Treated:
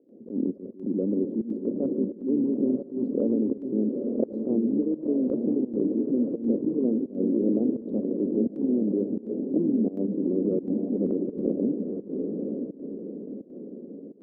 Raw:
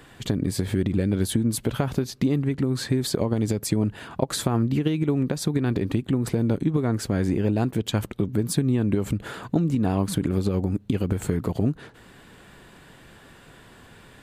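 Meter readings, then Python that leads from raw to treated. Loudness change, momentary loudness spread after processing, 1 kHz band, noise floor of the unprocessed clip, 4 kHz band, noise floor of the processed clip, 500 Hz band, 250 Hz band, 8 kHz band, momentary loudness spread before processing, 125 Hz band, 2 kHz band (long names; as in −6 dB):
−2.0 dB, 11 LU, below −15 dB, −50 dBFS, below −40 dB, −45 dBFS, +0.5 dB, +0.5 dB, below −40 dB, 4 LU, −15.0 dB, below −40 dB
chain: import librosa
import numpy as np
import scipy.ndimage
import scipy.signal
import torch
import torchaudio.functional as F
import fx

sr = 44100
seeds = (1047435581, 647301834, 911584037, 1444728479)

p1 = fx.wiener(x, sr, points=41)
p2 = scipy.signal.sosfilt(scipy.signal.ellip(3, 1.0, 60, [220.0, 550.0], 'bandpass', fs=sr, output='sos'), p1)
p3 = fx.over_compress(p2, sr, threshold_db=-33.0, ratio=-0.5)
p4 = p2 + (p3 * 10.0 ** (-1.5 / 20.0))
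p5 = fx.echo_diffused(p4, sr, ms=931, feedback_pct=44, wet_db=-4)
p6 = fx.volume_shaper(p5, sr, bpm=85, per_beat=1, depth_db=-16, release_ms=86.0, shape='slow start')
y = fx.attack_slew(p6, sr, db_per_s=170.0)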